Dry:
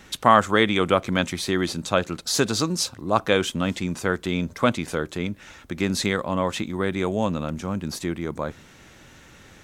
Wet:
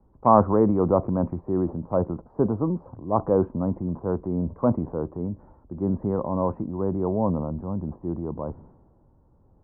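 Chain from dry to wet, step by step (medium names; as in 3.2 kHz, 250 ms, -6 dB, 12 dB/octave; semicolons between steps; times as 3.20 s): transient shaper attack -2 dB, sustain +5 dB; elliptic low-pass 1 kHz, stop band 70 dB; bass shelf 100 Hz +5.5 dB; three bands expanded up and down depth 40%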